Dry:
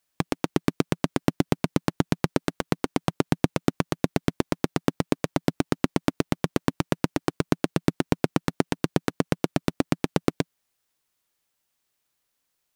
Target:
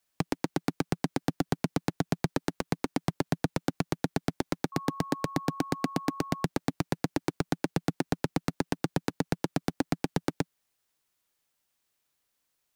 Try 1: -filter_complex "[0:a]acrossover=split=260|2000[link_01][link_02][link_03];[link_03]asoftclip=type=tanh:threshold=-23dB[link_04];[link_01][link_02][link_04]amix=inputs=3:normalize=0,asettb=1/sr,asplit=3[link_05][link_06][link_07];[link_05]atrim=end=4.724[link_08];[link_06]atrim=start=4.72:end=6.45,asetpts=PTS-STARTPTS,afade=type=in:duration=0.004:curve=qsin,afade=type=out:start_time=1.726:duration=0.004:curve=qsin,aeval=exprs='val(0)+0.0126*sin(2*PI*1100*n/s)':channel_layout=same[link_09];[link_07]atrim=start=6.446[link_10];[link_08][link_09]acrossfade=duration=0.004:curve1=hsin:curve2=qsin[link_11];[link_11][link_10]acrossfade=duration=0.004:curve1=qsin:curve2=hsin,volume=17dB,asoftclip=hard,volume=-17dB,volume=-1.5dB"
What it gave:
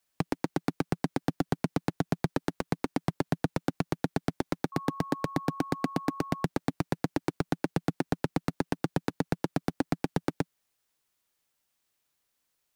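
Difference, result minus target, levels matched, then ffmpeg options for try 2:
soft clipping: distortion +14 dB
-filter_complex "[0:a]acrossover=split=260|2000[link_01][link_02][link_03];[link_03]asoftclip=type=tanh:threshold=-13dB[link_04];[link_01][link_02][link_04]amix=inputs=3:normalize=0,asettb=1/sr,asplit=3[link_05][link_06][link_07];[link_05]atrim=end=4.724[link_08];[link_06]atrim=start=4.72:end=6.45,asetpts=PTS-STARTPTS,afade=type=in:duration=0.004:curve=qsin,afade=type=out:start_time=1.726:duration=0.004:curve=qsin,aeval=exprs='val(0)+0.0126*sin(2*PI*1100*n/s)':channel_layout=same[link_09];[link_07]atrim=start=6.446[link_10];[link_08][link_09]acrossfade=duration=0.004:curve1=hsin:curve2=qsin[link_11];[link_11][link_10]acrossfade=duration=0.004:curve1=qsin:curve2=hsin,volume=17dB,asoftclip=hard,volume=-17dB,volume=-1.5dB"

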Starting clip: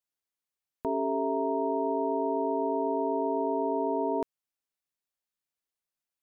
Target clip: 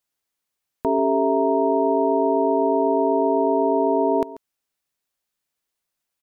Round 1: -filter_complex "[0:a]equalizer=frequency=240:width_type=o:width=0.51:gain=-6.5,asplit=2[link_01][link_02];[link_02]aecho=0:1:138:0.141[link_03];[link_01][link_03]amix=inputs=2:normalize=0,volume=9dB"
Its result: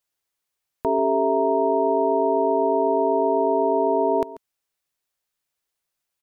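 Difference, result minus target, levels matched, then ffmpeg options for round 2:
250 Hz band −2.5 dB
-filter_complex "[0:a]asplit=2[link_01][link_02];[link_02]aecho=0:1:138:0.141[link_03];[link_01][link_03]amix=inputs=2:normalize=0,volume=9dB"

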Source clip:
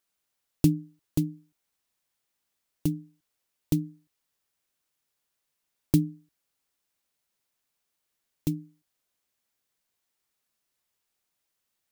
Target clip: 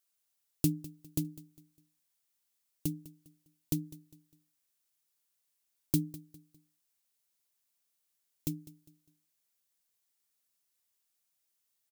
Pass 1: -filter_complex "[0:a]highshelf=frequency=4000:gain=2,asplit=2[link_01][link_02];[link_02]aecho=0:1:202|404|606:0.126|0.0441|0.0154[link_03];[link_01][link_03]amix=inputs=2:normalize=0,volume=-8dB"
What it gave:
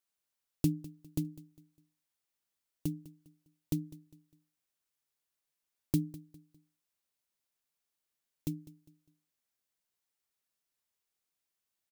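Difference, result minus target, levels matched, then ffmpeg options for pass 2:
8,000 Hz band −5.5 dB
-filter_complex "[0:a]highshelf=frequency=4000:gain=10.5,asplit=2[link_01][link_02];[link_02]aecho=0:1:202|404|606:0.126|0.0441|0.0154[link_03];[link_01][link_03]amix=inputs=2:normalize=0,volume=-8dB"

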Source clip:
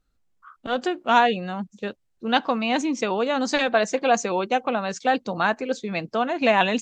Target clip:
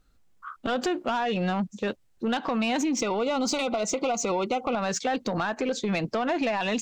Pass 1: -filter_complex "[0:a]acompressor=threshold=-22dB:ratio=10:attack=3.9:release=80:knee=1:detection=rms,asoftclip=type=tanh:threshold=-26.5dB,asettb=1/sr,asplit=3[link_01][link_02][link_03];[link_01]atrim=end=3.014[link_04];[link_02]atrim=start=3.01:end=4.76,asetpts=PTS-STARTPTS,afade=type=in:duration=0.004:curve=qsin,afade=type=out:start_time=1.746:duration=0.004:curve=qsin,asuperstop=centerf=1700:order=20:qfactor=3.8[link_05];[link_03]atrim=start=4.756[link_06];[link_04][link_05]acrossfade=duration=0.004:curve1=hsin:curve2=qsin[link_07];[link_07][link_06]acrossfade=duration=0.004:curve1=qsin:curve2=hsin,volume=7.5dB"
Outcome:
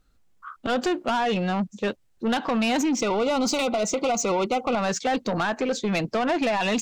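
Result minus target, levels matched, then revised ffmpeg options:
downward compressor: peak gain reduction −5.5 dB
-filter_complex "[0:a]acompressor=threshold=-28dB:ratio=10:attack=3.9:release=80:knee=1:detection=rms,asoftclip=type=tanh:threshold=-26.5dB,asettb=1/sr,asplit=3[link_01][link_02][link_03];[link_01]atrim=end=3.014[link_04];[link_02]atrim=start=3.01:end=4.76,asetpts=PTS-STARTPTS,afade=type=in:duration=0.004:curve=qsin,afade=type=out:start_time=1.746:duration=0.004:curve=qsin,asuperstop=centerf=1700:order=20:qfactor=3.8[link_05];[link_03]atrim=start=4.756[link_06];[link_04][link_05]acrossfade=duration=0.004:curve1=hsin:curve2=qsin[link_07];[link_07][link_06]acrossfade=duration=0.004:curve1=qsin:curve2=hsin,volume=7.5dB"

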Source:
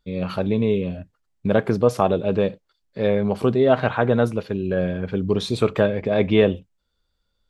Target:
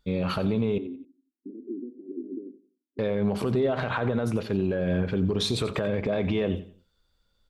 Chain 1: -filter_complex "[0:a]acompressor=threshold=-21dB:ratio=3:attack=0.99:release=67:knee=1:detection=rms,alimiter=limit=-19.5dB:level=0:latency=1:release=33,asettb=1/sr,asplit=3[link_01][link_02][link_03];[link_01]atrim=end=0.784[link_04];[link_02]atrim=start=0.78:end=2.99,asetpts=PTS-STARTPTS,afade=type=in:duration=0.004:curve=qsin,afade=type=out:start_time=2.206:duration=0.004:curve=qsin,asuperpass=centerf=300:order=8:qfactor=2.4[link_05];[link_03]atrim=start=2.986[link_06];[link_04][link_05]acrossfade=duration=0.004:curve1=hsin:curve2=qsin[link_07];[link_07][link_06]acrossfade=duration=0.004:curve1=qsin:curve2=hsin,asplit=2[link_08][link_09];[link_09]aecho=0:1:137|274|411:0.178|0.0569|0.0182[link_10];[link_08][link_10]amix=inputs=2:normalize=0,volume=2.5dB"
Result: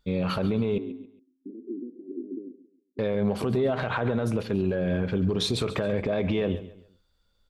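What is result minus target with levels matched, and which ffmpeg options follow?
echo 48 ms late
-filter_complex "[0:a]acompressor=threshold=-21dB:ratio=3:attack=0.99:release=67:knee=1:detection=rms,alimiter=limit=-19.5dB:level=0:latency=1:release=33,asettb=1/sr,asplit=3[link_01][link_02][link_03];[link_01]atrim=end=0.784[link_04];[link_02]atrim=start=0.78:end=2.99,asetpts=PTS-STARTPTS,afade=type=in:duration=0.004:curve=qsin,afade=type=out:start_time=2.206:duration=0.004:curve=qsin,asuperpass=centerf=300:order=8:qfactor=2.4[link_05];[link_03]atrim=start=2.986[link_06];[link_04][link_05]acrossfade=duration=0.004:curve1=hsin:curve2=qsin[link_07];[link_07][link_06]acrossfade=duration=0.004:curve1=qsin:curve2=hsin,asplit=2[link_08][link_09];[link_09]aecho=0:1:89|178|267:0.178|0.0569|0.0182[link_10];[link_08][link_10]amix=inputs=2:normalize=0,volume=2.5dB"

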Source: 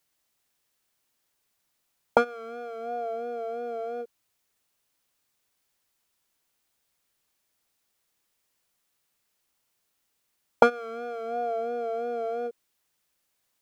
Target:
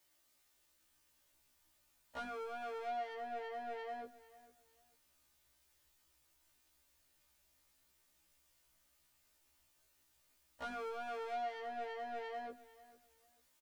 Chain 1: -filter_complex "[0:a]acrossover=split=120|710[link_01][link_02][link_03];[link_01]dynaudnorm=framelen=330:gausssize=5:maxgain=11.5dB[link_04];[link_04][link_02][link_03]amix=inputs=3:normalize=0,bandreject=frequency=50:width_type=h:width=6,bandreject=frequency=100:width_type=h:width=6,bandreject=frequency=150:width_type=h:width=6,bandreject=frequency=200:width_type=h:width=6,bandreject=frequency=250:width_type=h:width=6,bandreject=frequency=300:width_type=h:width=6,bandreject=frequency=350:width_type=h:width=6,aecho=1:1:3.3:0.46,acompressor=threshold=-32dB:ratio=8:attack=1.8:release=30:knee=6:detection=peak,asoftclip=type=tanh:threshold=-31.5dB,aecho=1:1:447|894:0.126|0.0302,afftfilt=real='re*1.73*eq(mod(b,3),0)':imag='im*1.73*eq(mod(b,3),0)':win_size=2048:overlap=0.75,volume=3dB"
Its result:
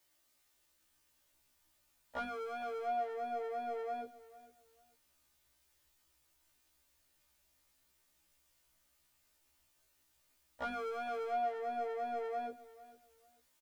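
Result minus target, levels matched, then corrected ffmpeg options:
soft clipping: distortion −9 dB
-filter_complex "[0:a]acrossover=split=120|710[link_01][link_02][link_03];[link_01]dynaudnorm=framelen=330:gausssize=5:maxgain=11.5dB[link_04];[link_04][link_02][link_03]amix=inputs=3:normalize=0,bandreject=frequency=50:width_type=h:width=6,bandreject=frequency=100:width_type=h:width=6,bandreject=frequency=150:width_type=h:width=6,bandreject=frequency=200:width_type=h:width=6,bandreject=frequency=250:width_type=h:width=6,bandreject=frequency=300:width_type=h:width=6,bandreject=frequency=350:width_type=h:width=6,aecho=1:1:3.3:0.46,acompressor=threshold=-32dB:ratio=8:attack=1.8:release=30:knee=6:detection=peak,asoftclip=type=tanh:threshold=-40.5dB,aecho=1:1:447|894:0.126|0.0302,afftfilt=real='re*1.73*eq(mod(b,3),0)':imag='im*1.73*eq(mod(b,3),0)':win_size=2048:overlap=0.75,volume=3dB"

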